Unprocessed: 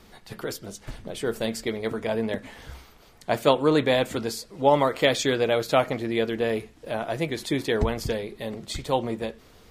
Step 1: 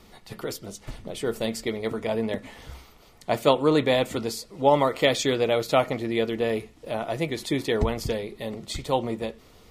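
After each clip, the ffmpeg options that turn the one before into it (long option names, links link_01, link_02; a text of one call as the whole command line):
ffmpeg -i in.wav -af "bandreject=frequency=1600:width=7.6" out.wav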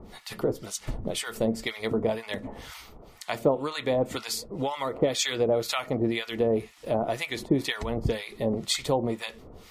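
ffmpeg -i in.wav -filter_complex "[0:a]acompressor=threshold=-27dB:ratio=5,acrossover=split=960[link_01][link_02];[link_01]aeval=exprs='val(0)*(1-1/2+1/2*cos(2*PI*2*n/s))':channel_layout=same[link_03];[link_02]aeval=exprs='val(0)*(1-1/2-1/2*cos(2*PI*2*n/s))':channel_layout=same[link_04];[link_03][link_04]amix=inputs=2:normalize=0,volume=8.5dB" out.wav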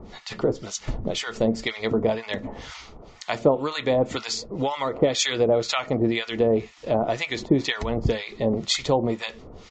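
ffmpeg -i in.wav -af "aresample=16000,aresample=44100,volume=4dB" out.wav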